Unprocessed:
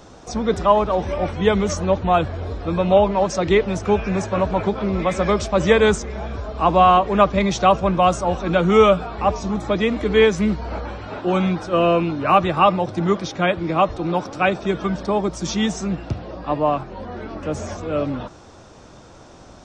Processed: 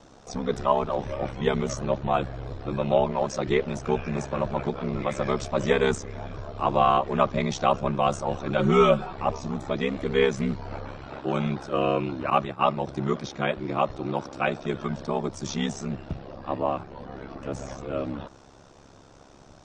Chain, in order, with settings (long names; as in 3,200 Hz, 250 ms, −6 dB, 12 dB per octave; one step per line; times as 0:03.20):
ring modulation 34 Hz
0:08.58–0:09.13: comb filter 5.4 ms, depth 87%
0:12.30–0:12.77: downward expander −16 dBFS
level −4.5 dB